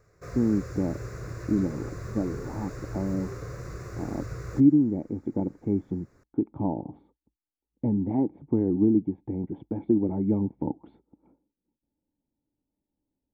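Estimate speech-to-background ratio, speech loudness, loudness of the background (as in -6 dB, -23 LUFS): 11.0 dB, -28.0 LUFS, -39.0 LUFS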